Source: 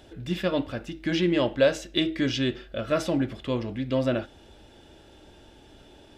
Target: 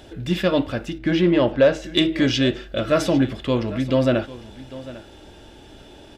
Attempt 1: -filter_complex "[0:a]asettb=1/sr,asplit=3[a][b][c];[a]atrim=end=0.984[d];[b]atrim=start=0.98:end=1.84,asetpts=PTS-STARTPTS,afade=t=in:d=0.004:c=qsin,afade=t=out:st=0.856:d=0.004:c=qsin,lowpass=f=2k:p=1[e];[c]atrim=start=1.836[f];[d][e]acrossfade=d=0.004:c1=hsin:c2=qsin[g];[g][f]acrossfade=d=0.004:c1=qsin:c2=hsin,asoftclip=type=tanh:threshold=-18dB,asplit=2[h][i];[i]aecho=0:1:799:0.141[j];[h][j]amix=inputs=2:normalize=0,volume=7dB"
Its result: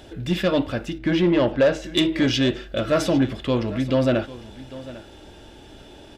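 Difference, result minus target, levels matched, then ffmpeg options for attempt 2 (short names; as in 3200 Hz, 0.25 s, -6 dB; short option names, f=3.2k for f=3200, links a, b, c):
soft clip: distortion +8 dB
-filter_complex "[0:a]asettb=1/sr,asplit=3[a][b][c];[a]atrim=end=0.984[d];[b]atrim=start=0.98:end=1.84,asetpts=PTS-STARTPTS,afade=t=in:d=0.004:c=qsin,afade=t=out:st=0.856:d=0.004:c=qsin,lowpass=f=2k:p=1[e];[c]atrim=start=1.836[f];[d][e]acrossfade=d=0.004:c1=hsin:c2=qsin[g];[g][f]acrossfade=d=0.004:c1=qsin:c2=hsin,asoftclip=type=tanh:threshold=-12dB,asplit=2[h][i];[i]aecho=0:1:799:0.141[j];[h][j]amix=inputs=2:normalize=0,volume=7dB"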